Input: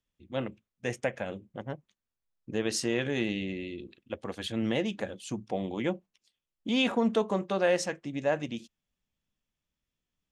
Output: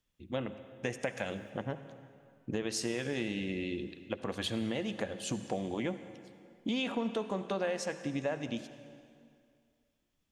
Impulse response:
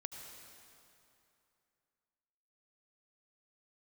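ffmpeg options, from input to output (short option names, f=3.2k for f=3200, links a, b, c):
-filter_complex "[0:a]asettb=1/sr,asplit=3[a][b][c];[a]atrim=end=1.074[d];[b]atrim=start=1.07:end=1.5,asetpts=PTS-STARTPTS,afade=t=in:d=0.004:c=qsin,afade=t=out:st=0.426:d=0.004:c=qsin,highshelf=f=2.6k:g=12[e];[c]atrim=start=1.496[f];[d][e]acrossfade=d=0.004:c1=hsin:c2=qsin[g];[g][f]acrossfade=d=0.004:c1=qsin:c2=hsin,acompressor=threshold=-36dB:ratio=5,asplit=2[h][i];[1:a]atrim=start_sample=2205,asetrate=52920,aresample=44100[j];[i][j]afir=irnorm=-1:irlink=0,volume=2dB[k];[h][k]amix=inputs=2:normalize=0"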